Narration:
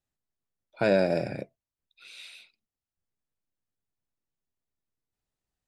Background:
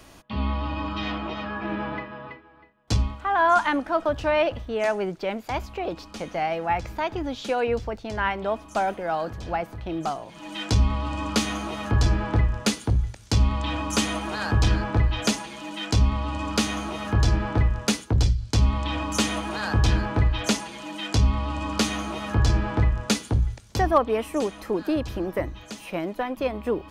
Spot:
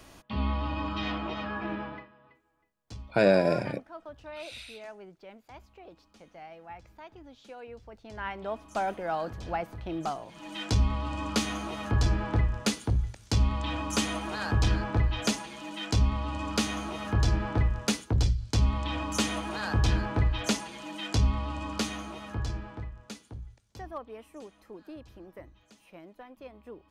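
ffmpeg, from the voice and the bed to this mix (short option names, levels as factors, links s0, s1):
-filter_complex "[0:a]adelay=2350,volume=1.19[s0];[1:a]volume=4.47,afade=t=out:st=1.59:d=0.54:silence=0.133352,afade=t=in:st=7.8:d=1.18:silence=0.158489,afade=t=out:st=21.25:d=1.66:silence=0.16788[s1];[s0][s1]amix=inputs=2:normalize=0"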